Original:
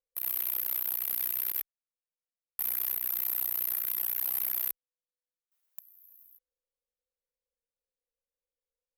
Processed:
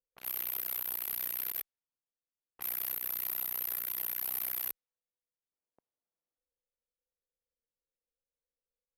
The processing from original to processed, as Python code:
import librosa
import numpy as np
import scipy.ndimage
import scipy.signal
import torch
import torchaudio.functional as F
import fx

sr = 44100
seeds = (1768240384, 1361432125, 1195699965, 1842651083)

y = fx.env_lowpass(x, sr, base_hz=530.0, full_db=-29.5)
y = fx.high_shelf(y, sr, hz=11000.0, db=-6.0)